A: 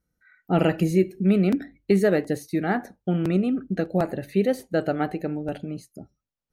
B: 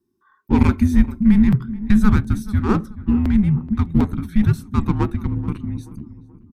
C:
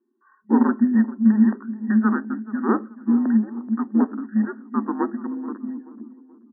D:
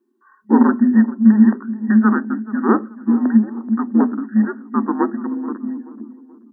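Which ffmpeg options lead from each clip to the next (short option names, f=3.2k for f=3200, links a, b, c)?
-filter_complex "[0:a]asplit=2[a][b];[b]adynamicsmooth=sensitivity=2.5:basefreq=640,volume=1dB[c];[a][c]amix=inputs=2:normalize=0,asplit=2[d][e];[e]adelay=430,lowpass=f=1.4k:p=1,volume=-15.5dB,asplit=2[f][g];[g]adelay=430,lowpass=f=1.4k:p=1,volume=0.5,asplit=2[h][i];[i]adelay=430,lowpass=f=1.4k:p=1,volume=0.5,asplit=2[j][k];[k]adelay=430,lowpass=f=1.4k:p=1,volume=0.5,asplit=2[l][m];[m]adelay=430,lowpass=f=1.4k:p=1,volume=0.5[n];[d][f][h][j][l][n]amix=inputs=6:normalize=0,afreqshift=-410"
-af "afftfilt=real='re*between(b*sr/4096,210,1900)':imag='im*between(b*sr/4096,210,1900)':win_size=4096:overlap=0.75"
-af "bandreject=f=60:t=h:w=6,bandreject=f=120:t=h:w=6,bandreject=f=180:t=h:w=6,bandreject=f=240:t=h:w=6,volume=5.5dB"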